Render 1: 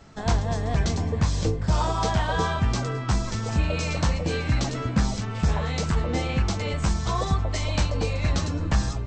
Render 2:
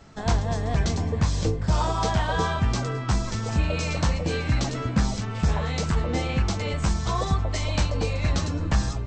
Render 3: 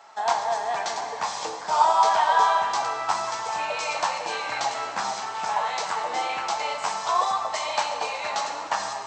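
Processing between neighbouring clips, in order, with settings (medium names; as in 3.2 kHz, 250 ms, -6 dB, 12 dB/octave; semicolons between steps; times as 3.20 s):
no audible change
resonant high-pass 840 Hz, resonance Q 3.5; reverberation RT60 2.1 s, pre-delay 4 ms, DRR 4 dB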